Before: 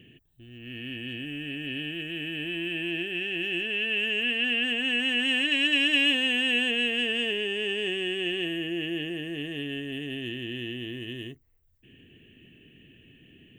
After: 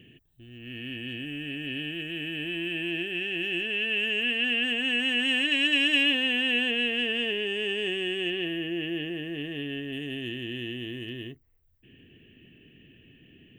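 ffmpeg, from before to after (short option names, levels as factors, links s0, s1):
-af "asetnsamples=n=441:p=0,asendcmd='6.03 equalizer g -8.5;7.47 equalizer g -2.5;8.3 equalizer g -12.5;9.93 equalizer g -2;11.09 equalizer g -12',equalizer=f=7700:t=o:w=0.88:g=-0.5"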